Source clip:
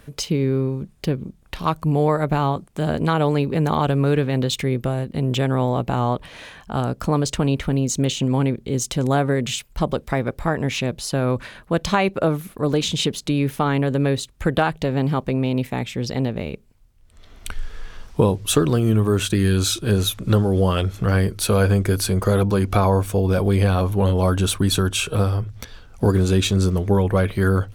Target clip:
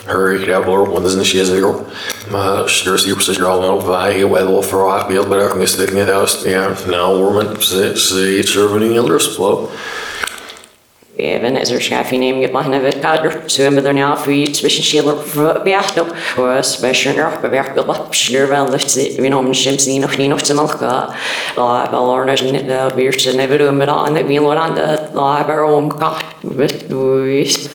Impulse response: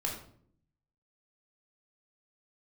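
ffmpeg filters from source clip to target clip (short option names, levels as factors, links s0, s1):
-filter_complex "[0:a]areverse,highpass=380,acompressor=threshold=0.0126:ratio=2.5,aecho=1:1:106|212|318|424:0.158|0.0634|0.0254|0.0101,asplit=2[s0][s1];[1:a]atrim=start_sample=2205[s2];[s1][s2]afir=irnorm=-1:irlink=0,volume=0.376[s3];[s0][s3]amix=inputs=2:normalize=0,alimiter=level_in=11.9:limit=0.891:release=50:level=0:latency=1,volume=0.891"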